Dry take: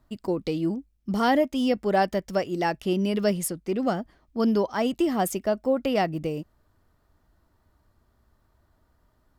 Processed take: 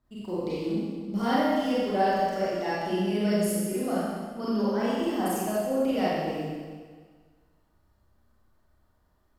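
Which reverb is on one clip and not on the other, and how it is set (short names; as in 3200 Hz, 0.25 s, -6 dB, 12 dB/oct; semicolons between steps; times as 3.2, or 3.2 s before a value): Schroeder reverb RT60 1.6 s, combs from 30 ms, DRR -9.5 dB; gain -12 dB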